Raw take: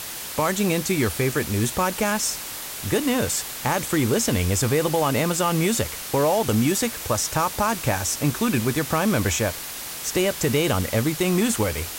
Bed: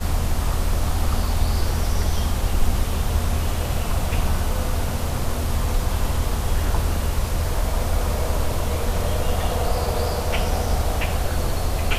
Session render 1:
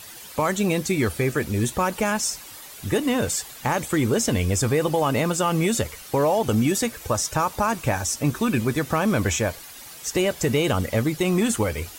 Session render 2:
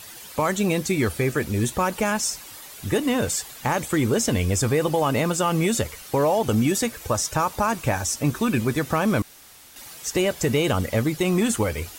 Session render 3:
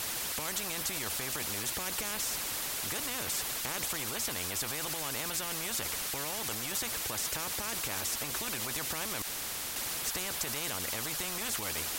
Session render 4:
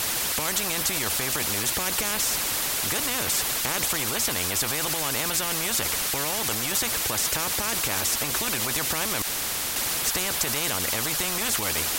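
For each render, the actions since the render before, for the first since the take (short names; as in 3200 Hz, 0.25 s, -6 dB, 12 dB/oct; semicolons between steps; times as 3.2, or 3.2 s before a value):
denoiser 11 dB, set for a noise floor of -34 dBFS
9.22–9.76 room tone
limiter -18 dBFS, peak gain reduction 8.5 dB; spectral compressor 4:1
gain +9 dB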